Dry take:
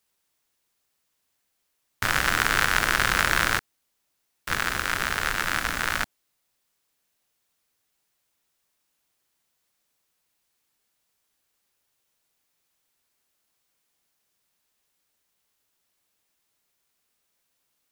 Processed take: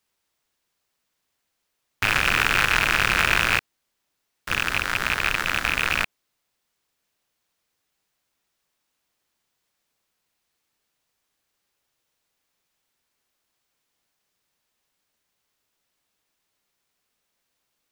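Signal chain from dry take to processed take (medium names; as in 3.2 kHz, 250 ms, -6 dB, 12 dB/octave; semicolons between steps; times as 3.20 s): rattle on loud lows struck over -35 dBFS, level -7 dBFS; in parallel at -6 dB: sample-rate reducer 19 kHz; on the sum: trim -3 dB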